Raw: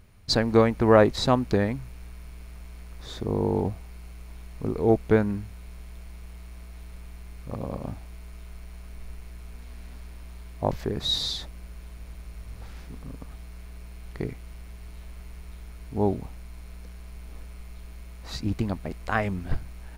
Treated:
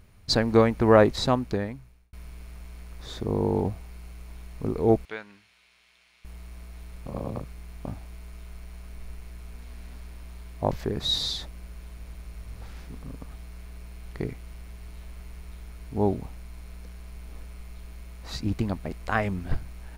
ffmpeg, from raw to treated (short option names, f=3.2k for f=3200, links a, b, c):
-filter_complex "[0:a]asettb=1/sr,asplit=3[a][b][c];[a]atrim=end=5.054[d];[b]atrim=start=5.05:end=6.25,asetpts=PTS-STARTPTS,afade=t=in:d=0.004:c=qsin,afade=t=out:st=1.196:d=0.004:c=qsin,bandpass=f=3.1k:t=q:w=1.2[e];[c]atrim=start=6.246[f];[d][e]acrossfade=d=0.004:c1=hsin:c2=qsin[g];[g][f]acrossfade=d=0.004:c1=qsin:c2=hsin,asplit=4[h][i][j][k];[h]atrim=end=2.13,asetpts=PTS-STARTPTS,afade=t=out:st=1.13:d=1[l];[i]atrim=start=2.13:end=7.062,asetpts=PTS-STARTPTS,afade=t=in:d=0.004:c=hsin[m];[j]atrim=start=7.058:end=7.852,asetpts=PTS-STARTPTS,areverse[n];[k]atrim=start=7.848[o];[l][m]concat=n=2:v=0:a=1[p];[p][n]acrossfade=d=0.004:c1=hsin:c2=hsin[q];[q][o]acrossfade=d=0.004:c1=hsin:c2=hsin"